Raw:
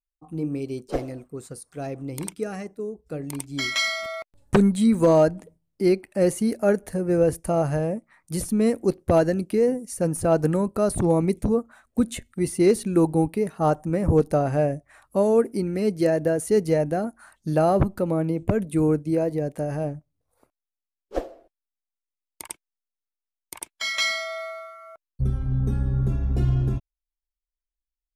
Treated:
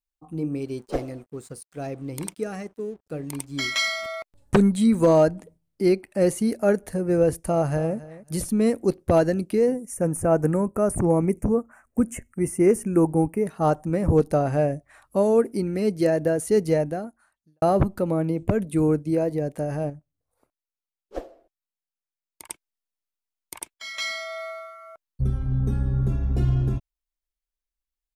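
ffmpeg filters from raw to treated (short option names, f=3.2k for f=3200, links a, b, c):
-filter_complex "[0:a]asettb=1/sr,asplit=3[a][b][c];[a]atrim=end=0.604[d];[b]atrim=start=0.6:end=4.07,asetpts=PTS-STARTPTS,afade=t=in:d=0.004:c=qsin,afade=t=out:st=3.466:d=0.004:c=qsin,aeval=exprs='sgn(val(0))*max(abs(val(0))-0.00141,0)':c=same[e];[c]atrim=start=4.066[f];[d][e]acrossfade=d=0.004:c1=hsin:c2=qsin[g];[g][f]acrossfade=d=0.004:c1=qsin:c2=hsin,asplit=2[h][i];[i]afade=t=in:st=7.44:d=0.01,afade=t=out:st=7.96:d=0.01,aecho=0:1:270|540:0.133352|0.0200028[j];[h][j]amix=inputs=2:normalize=0,asettb=1/sr,asplit=3[k][l][m];[k]atrim=end=9.804[n];[l]atrim=start=9.8:end=13.46,asetpts=PTS-STARTPTS,afade=t=in:d=0.004:c=qsin,afade=t=out:st=3.656:d=0.004:c=qsin,asuperstop=centerf=3900:order=4:qfactor=1[o];[m]atrim=start=13.456[p];[n][o]acrossfade=d=0.004:c1=hsin:c2=qsin[q];[q][p]acrossfade=d=0.004:c1=qsin:c2=hsin,asplit=5[r][s][t][u][v];[r]atrim=end=17.62,asetpts=PTS-STARTPTS,afade=t=out:st=16.77:d=0.85:c=qua[w];[s]atrim=start=17.62:end=19.902,asetpts=PTS-STARTPTS,afade=t=in:d=0.004:c=hsin[x];[t]atrim=start=19.898:end=22.492,asetpts=PTS-STARTPTS,volume=-5.5dB[y];[u]atrim=start=22.488:end=23.74,asetpts=PTS-STARTPTS,afade=t=out:st=1.248:d=0.004:c=hsin:silence=0.223872[z];[v]atrim=start=23.74,asetpts=PTS-STARTPTS,afade=t=in:d=0.77:silence=0.223872[aa];[w][x]concat=n=2:v=0:a=1[ab];[ab][y]acrossfade=d=0.004:c1=hsin:c2=hsin[ac];[z][aa]concat=n=2:v=0:a=1[ad];[ac][ad]acrossfade=d=0.004:c1=hsin:c2=hsin"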